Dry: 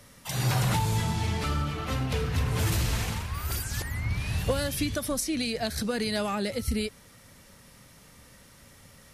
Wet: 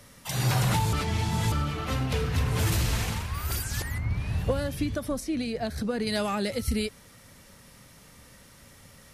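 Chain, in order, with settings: 0.93–1.52 reverse; 3.98–6.07 high shelf 2000 Hz -11 dB; gain +1 dB

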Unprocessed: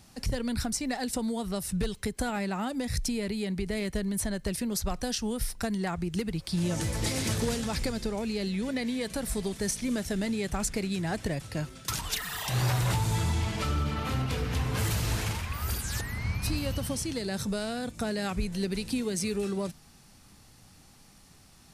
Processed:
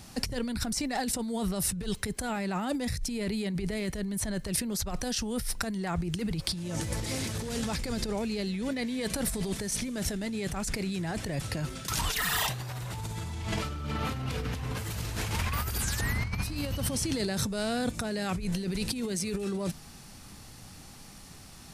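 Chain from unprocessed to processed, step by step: negative-ratio compressor -35 dBFS, ratio -1; gain +3 dB

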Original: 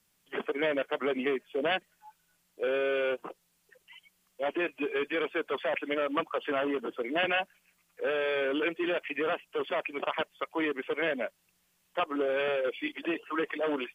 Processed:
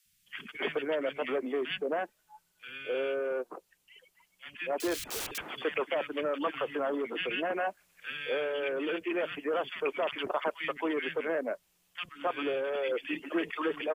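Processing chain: 4.78–5.38 wrapped overs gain 34.5 dB; three bands offset in time highs, lows, mids 50/270 ms, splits 190/1700 Hz; vocal rider within 4 dB 0.5 s

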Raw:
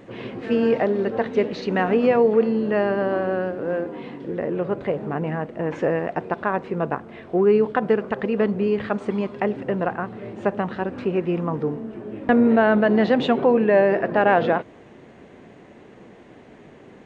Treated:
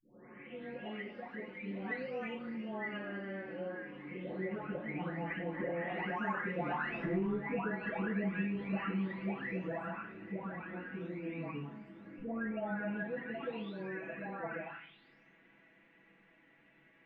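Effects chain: spectral delay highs late, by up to 0.997 s; Doppler pass-by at 6.97, 15 m/s, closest 2.6 m; in parallel at -7 dB: hard clip -27.5 dBFS, distortion -7 dB; on the sum: bell 2200 Hz +13 dB 1.1 oct; compressor 6:1, threshold -42 dBFS, peak gain reduction 21.5 dB; tone controls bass +2 dB, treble -12 dB; reverb RT60 0.45 s, pre-delay 4 ms, DRR 2.5 dB; mismatched tape noise reduction encoder only; gain +5 dB

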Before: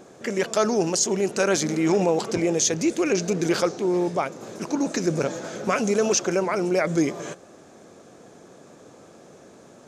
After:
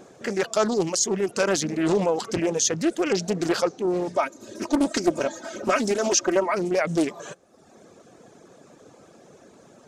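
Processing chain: reverb removal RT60 0.89 s; 4.12–6.54 comb 3.2 ms, depth 77%; Doppler distortion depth 0.44 ms

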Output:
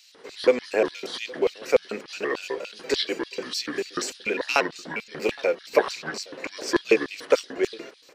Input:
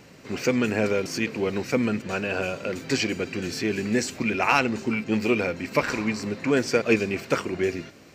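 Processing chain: trilling pitch shifter -6 st, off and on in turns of 0.118 s; LFO high-pass square 3.4 Hz 460–3900 Hz; outdoor echo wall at 140 m, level -23 dB

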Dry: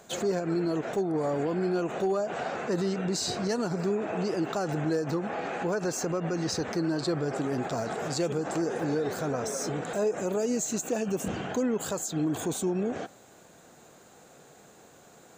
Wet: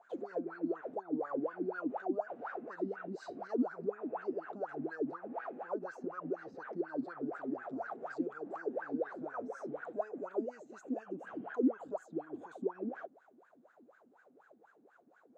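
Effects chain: wah 4.1 Hz 240–1600 Hz, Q 14; gain +5 dB

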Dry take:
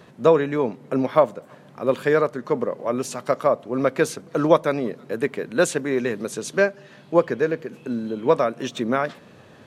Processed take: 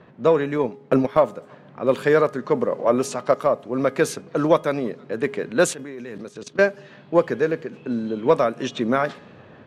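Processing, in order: 0.58–1.17 transient shaper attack +9 dB, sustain -6 dB; 2.71–3.34 bell 660 Hz +4.5 dB 2.4 oct; in parallel at -10 dB: soft clip -16 dBFS, distortion -9 dB; on the sum: low-pass opened by the level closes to 2300 Hz, open at -16 dBFS; 5.73–6.59 level quantiser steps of 17 dB; de-hum 414.1 Hz, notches 8; AGC gain up to 5 dB; gain -3 dB

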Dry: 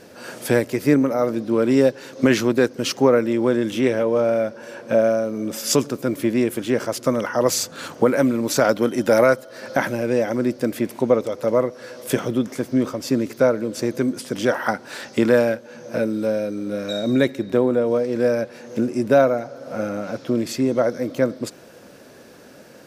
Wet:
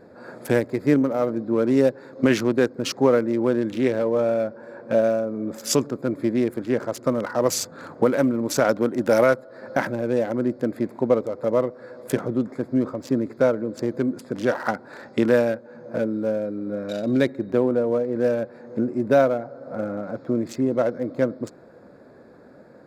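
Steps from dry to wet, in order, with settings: Wiener smoothing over 15 samples; gain -2 dB

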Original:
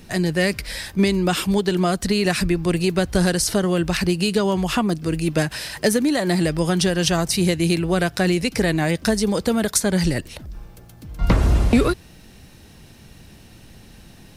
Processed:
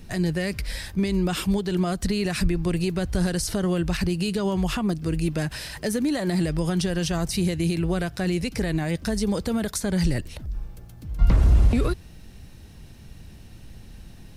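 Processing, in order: limiter -13 dBFS, peak gain reduction 7 dB; low shelf 120 Hz +11.5 dB; gain -5 dB

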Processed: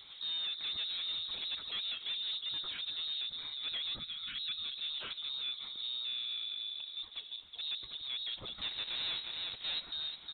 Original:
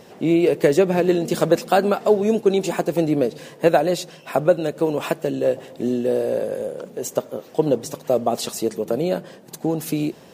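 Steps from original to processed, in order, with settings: 8.58–9.8 half-waves squared off; echo 0.36 s -14 dB; soft clip -20.5 dBFS, distortion -7 dB; compressor, threshold -27 dBFS, peak gain reduction 5.5 dB; limiter -27 dBFS, peak gain reduction 5.5 dB; inverted band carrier 4000 Hz; 3.99–4.64 band shelf 580 Hz -14 dB; 7.36–7.81 three-band expander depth 70%; gain -8 dB

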